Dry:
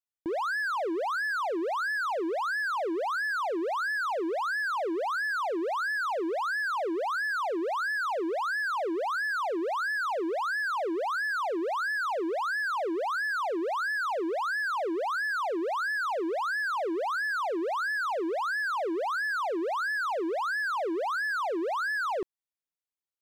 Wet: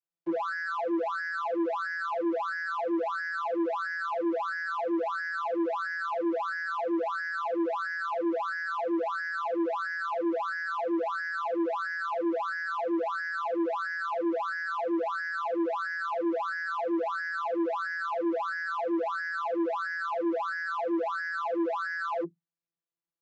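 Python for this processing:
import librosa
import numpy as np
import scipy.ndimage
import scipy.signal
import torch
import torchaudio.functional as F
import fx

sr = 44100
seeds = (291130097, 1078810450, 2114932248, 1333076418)

y = fx.vocoder(x, sr, bands=32, carrier='saw', carrier_hz=168.0)
y = 10.0 ** (-27.0 / 20.0) * np.tanh(y / 10.0 ** (-27.0 / 20.0))
y = F.gain(torch.from_numpy(y), 3.0).numpy()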